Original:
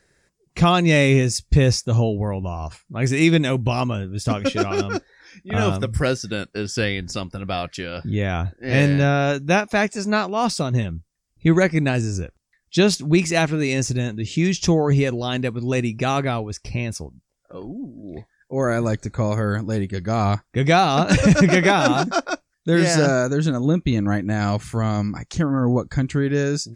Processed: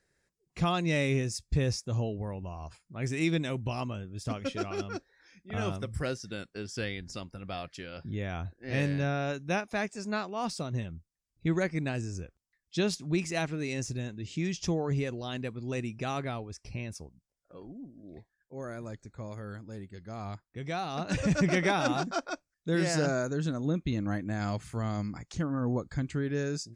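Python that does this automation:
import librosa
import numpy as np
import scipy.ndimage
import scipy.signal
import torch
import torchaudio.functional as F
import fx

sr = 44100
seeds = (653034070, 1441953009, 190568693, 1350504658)

y = fx.gain(x, sr, db=fx.line((18.07, -12.5), (18.68, -19.5), (20.69, -19.5), (21.49, -11.0)))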